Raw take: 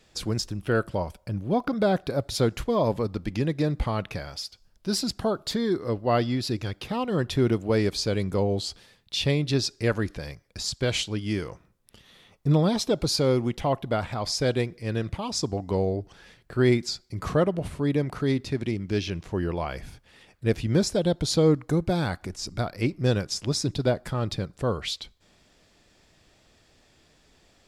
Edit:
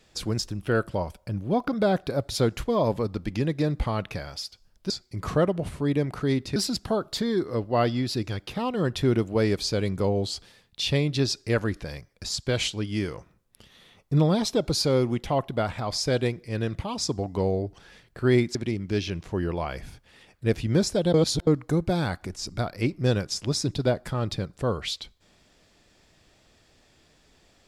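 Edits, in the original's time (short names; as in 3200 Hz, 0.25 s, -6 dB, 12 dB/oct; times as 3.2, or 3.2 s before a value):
16.89–18.55 move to 4.9
21.14–21.47 reverse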